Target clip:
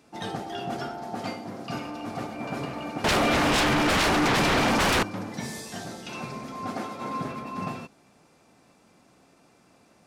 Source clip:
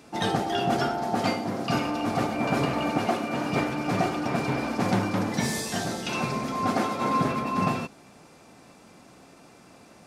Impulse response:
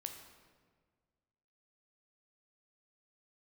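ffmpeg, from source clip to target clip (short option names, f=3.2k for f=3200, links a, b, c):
-filter_complex "[0:a]asettb=1/sr,asplit=3[a][b][c];[a]atrim=end=3.044[d];[b]atrim=start=3.04:end=5.03,asetpts=PTS-STARTPTS,afade=t=in:d=0.004:c=qsin,afade=t=out:st=1.986:d=0.004:c=qsin,aeval=exprs='0.266*sin(PI/2*7.08*val(0)/0.266)':c=same[e];[c]atrim=start=5.026[f];[d][e]acrossfade=d=0.004:c1=hsin:c2=qsin[g];[g][f]acrossfade=d=0.004:c1=qsin:c2=hsin,volume=-7.5dB"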